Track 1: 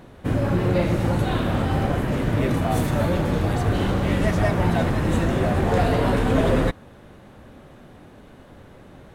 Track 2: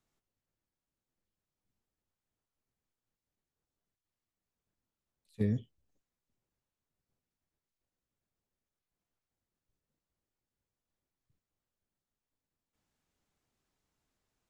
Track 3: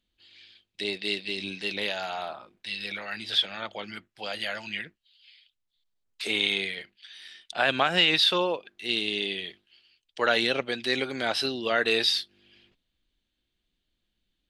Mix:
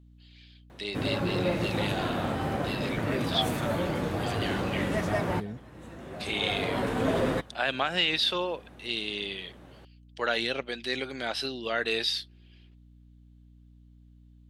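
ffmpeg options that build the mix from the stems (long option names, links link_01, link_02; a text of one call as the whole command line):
ffmpeg -i stem1.wav -i stem2.wav -i stem3.wav -filter_complex "[0:a]highpass=frequency=200:poles=1,adelay=700,volume=-5dB[link_01];[1:a]lowshelf=frequency=120:gain=-10.5,volume=-4.5dB,asplit=2[link_02][link_03];[2:a]volume=-4.5dB[link_04];[link_03]apad=whole_len=434321[link_05];[link_01][link_05]sidechaincompress=threshold=-57dB:ratio=8:attack=32:release=913[link_06];[link_06][link_02][link_04]amix=inputs=3:normalize=0,aeval=exprs='val(0)+0.00224*(sin(2*PI*60*n/s)+sin(2*PI*2*60*n/s)/2+sin(2*PI*3*60*n/s)/3+sin(2*PI*4*60*n/s)/4+sin(2*PI*5*60*n/s)/5)':channel_layout=same" out.wav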